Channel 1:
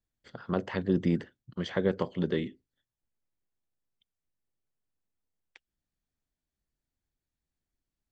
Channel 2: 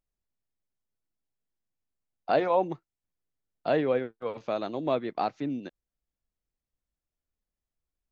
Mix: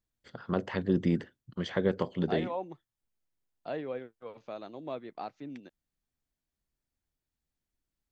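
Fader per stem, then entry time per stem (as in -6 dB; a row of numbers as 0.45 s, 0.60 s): -0.5 dB, -11.0 dB; 0.00 s, 0.00 s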